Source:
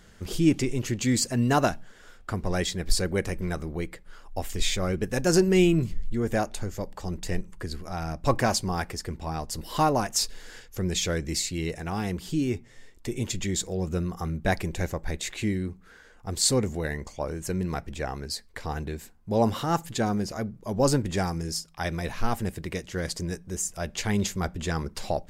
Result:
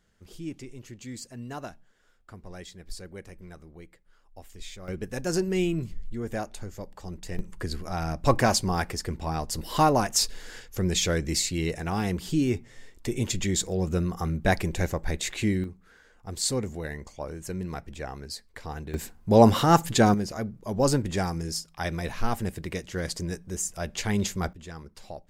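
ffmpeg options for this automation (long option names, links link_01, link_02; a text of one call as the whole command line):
ffmpeg -i in.wav -af "asetnsamples=nb_out_samples=441:pad=0,asendcmd='4.88 volume volume -6dB;7.39 volume volume 2dB;15.64 volume volume -4.5dB;18.94 volume volume 7dB;20.14 volume volume -0.5dB;24.53 volume volume -12.5dB',volume=-15.5dB" out.wav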